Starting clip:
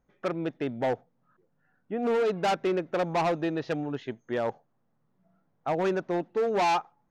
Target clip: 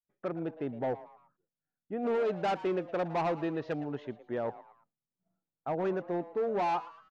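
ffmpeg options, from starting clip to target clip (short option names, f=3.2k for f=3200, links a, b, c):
-filter_complex "[0:a]asetnsamples=n=441:p=0,asendcmd='1.93 lowpass f 2500;4.05 lowpass f 1300',lowpass=f=1.1k:p=1,asplit=4[a][b][c][d];[b]adelay=113,afreqshift=150,volume=-17dB[e];[c]adelay=226,afreqshift=300,volume=-25.4dB[f];[d]adelay=339,afreqshift=450,volume=-33.8dB[g];[a][e][f][g]amix=inputs=4:normalize=0,agate=range=-33dB:threshold=-58dB:ratio=3:detection=peak,volume=-4dB"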